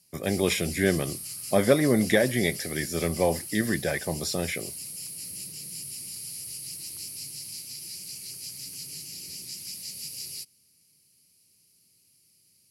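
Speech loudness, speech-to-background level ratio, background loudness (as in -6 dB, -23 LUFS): -26.5 LUFS, 9.0 dB, -35.5 LUFS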